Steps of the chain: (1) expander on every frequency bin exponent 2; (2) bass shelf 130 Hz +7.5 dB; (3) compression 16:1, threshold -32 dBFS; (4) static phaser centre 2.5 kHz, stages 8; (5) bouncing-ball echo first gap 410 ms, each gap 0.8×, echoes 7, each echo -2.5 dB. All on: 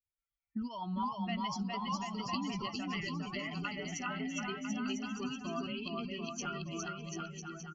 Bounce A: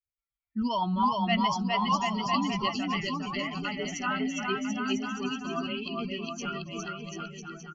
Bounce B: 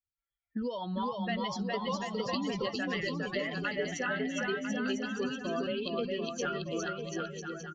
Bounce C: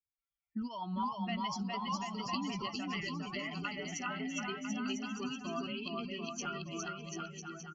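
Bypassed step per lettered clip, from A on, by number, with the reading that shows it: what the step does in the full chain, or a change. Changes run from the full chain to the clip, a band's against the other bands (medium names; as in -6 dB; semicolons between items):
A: 3, mean gain reduction 6.0 dB; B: 4, crest factor change -2.0 dB; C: 2, 125 Hz band -2.0 dB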